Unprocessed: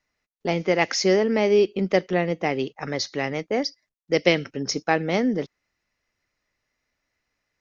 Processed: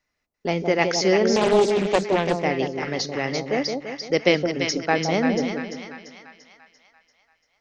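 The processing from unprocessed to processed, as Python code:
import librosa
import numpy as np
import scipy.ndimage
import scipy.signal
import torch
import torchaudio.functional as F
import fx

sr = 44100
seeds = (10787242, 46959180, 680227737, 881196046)

y = fx.echo_split(x, sr, split_hz=910.0, low_ms=168, high_ms=342, feedback_pct=52, wet_db=-5.0)
y = fx.doppler_dist(y, sr, depth_ms=0.49, at=(1.36, 2.44))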